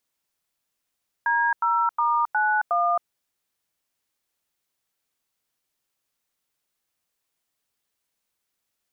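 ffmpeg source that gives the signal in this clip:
ffmpeg -f lavfi -i "aevalsrc='0.0841*clip(min(mod(t,0.362),0.269-mod(t,0.362))/0.002,0,1)*(eq(floor(t/0.362),0)*(sin(2*PI*941*mod(t,0.362))+sin(2*PI*1633*mod(t,0.362)))+eq(floor(t/0.362),1)*(sin(2*PI*941*mod(t,0.362))+sin(2*PI*1336*mod(t,0.362)))+eq(floor(t/0.362),2)*(sin(2*PI*941*mod(t,0.362))+sin(2*PI*1209*mod(t,0.362)))+eq(floor(t/0.362),3)*(sin(2*PI*852*mod(t,0.362))+sin(2*PI*1477*mod(t,0.362)))+eq(floor(t/0.362),4)*(sin(2*PI*697*mod(t,0.362))+sin(2*PI*1209*mod(t,0.362))))':duration=1.81:sample_rate=44100" out.wav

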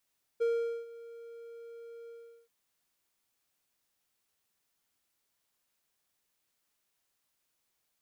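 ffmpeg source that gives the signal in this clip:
ffmpeg -f lavfi -i "aevalsrc='0.0708*(1-4*abs(mod(465*t+0.25,1)-0.5))':duration=2.082:sample_rate=44100,afade=type=in:duration=0.019,afade=type=out:start_time=0.019:duration=0.436:silence=0.1,afade=type=out:start_time=1.69:duration=0.392" out.wav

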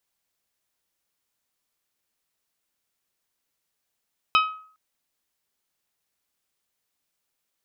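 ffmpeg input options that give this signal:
ffmpeg -f lavfi -i "aevalsrc='0.2*pow(10,-3*t/0.51)*sin(2*PI*1270*t)+0.126*pow(10,-3*t/0.314)*sin(2*PI*2540*t)+0.0794*pow(10,-3*t/0.276)*sin(2*PI*3048*t)+0.0501*pow(10,-3*t/0.236)*sin(2*PI*3810*t)+0.0316*pow(10,-3*t/0.193)*sin(2*PI*5080*t)':duration=0.41:sample_rate=44100" out.wav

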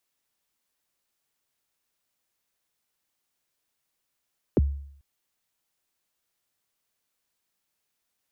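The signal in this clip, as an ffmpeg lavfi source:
ffmpeg -f lavfi -i "aevalsrc='0.188*pow(10,-3*t/0.65)*sin(2*PI*(520*0.027/log(70/520)*(exp(log(70/520)*min(t,0.027)/0.027)-1)+70*max(t-0.027,0)))':duration=0.44:sample_rate=44100" out.wav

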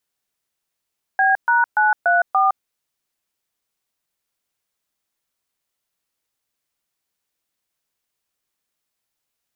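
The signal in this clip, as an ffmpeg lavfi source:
ffmpeg -f lavfi -i "aevalsrc='0.168*clip(min(mod(t,0.289),0.162-mod(t,0.289))/0.002,0,1)*(eq(floor(t/0.289),0)*(sin(2*PI*770*mod(t,0.289))+sin(2*PI*1633*mod(t,0.289)))+eq(floor(t/0.289),1)*(sin(2*PI*941*mod(t,0.289))+sin(2*PI*1477*mod(t,0.289)))+eq(floor(t/0.289),2)*(sin(2*PI*852*mod(t,0.289))+sin(2*PI*1477*mod(t,0.289)))+eq(floor(t/0.289),3)*(sin(2*PI*697*mod(t,0.289))+sin(2*PI*1477*mod(t,0.289)))+eq(floor(t/0.289),4)*(sin(2*PI*770*mod(t,0.289))+sin(2*PI*1209*mod(t,0.289))))':duration=1.445:sample_rate=44100" out.wav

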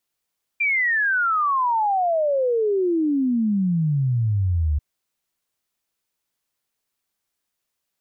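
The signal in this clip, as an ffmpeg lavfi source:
ffmpeg -f lavfi -i "aevalsrc='0.133*clip(min(t,4.19-t)/0.01,0,1)*sin(2*PI*2400*4.19/log(71/2400)*(exp(log(71/2400)*t/4.19)-1))':duration=4.19:sample_rate=44100" out.wav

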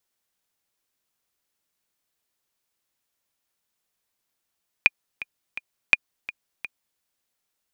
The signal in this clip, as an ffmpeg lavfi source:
ffmpeg -f lavfi -i "aevalsrc='pow(10,(-1-17.5*gte(mod(t,3*60/168),60/168))/20)*sin(2*PI*2430*mod(t,60/168))*exp(-6.91*mod(t,60/168)/0.03)':duration=2.14:sample_rate=44100" out.wav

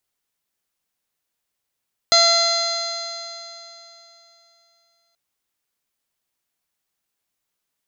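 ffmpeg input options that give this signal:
ffmpeg -f lavfi -i "aevalsrc='0.133*pow(10,-3*t/3.21)*sin(2*PI*677.37*t)+0.0891*pow(10,-3*t/3.21)*sin(2*PI*1356.98*t)+0.0631*pow(10,-3*t/3.21)*sin(2*PI*2041.03*t)+0.0141*pow(10,-3*t/3.21)*sin(2*PI*2731.73*t)+0.0562*pow(10,-3*t/3.21)*sin(2*PI*3431.23*t)+0.237*pow(10,-3*t/3.21)*sin(2*PI*4141.65*t)+0.0944*pow(10,-3*t/3.21)*sin(2*PI*4865.04*t)+0.0178*pow(10,-3*t/3.21)*sin(2*PI*5603.4*t)+0.0841*pow(10,-3*t/3.21)*sin(2*PI*6358.65*t)+0.0266*pow(10,-3*t/3.21)*sin(2*PI*7132.64*t)':duration=3.03:sample_rate=44100" out.wav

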